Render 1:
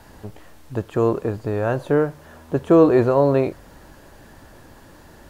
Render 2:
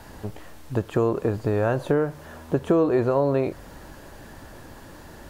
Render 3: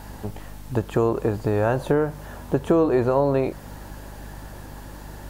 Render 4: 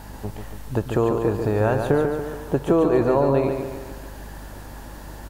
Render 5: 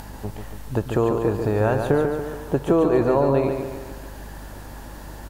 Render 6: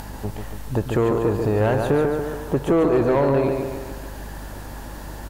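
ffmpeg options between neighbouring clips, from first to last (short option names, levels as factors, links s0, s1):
-af "acompressor=threshold=0.0891:ratio=4,volume=1.33"
-af "equalizer=f=850:t=o:w=0.29:g=4.5,crystalizer=i=0.5:c=0,aeval=exprs='val(0)+0.01*(sin(2*PI*50*n/s)+sin(2*PI*2*50*n/s)/2+sin(2*PI*3*50*n/s)/3+sin(2*PI*4*50*n/s)/4+sin(2*PI*5*50*n/s)/5)':c=same,volume=1.12"
-af "aecho=1:1:143|286|429|572|715|858:0.501|0.246|0.12|0.059|0.0289|0.0142"
-af "acompressor=mode=upward:threshold=0.0178:ratio=2.5"
-af "asoftclip=type=tanh:threshold=0.178,volume=1.41"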